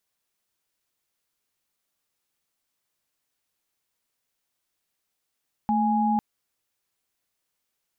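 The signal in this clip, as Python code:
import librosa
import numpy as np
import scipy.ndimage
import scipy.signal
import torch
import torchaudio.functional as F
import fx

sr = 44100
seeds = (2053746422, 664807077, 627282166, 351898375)

y = fx.chord(sr, length_s=0.5, notes=(57, 80), wave='sine', level_db=-22.5)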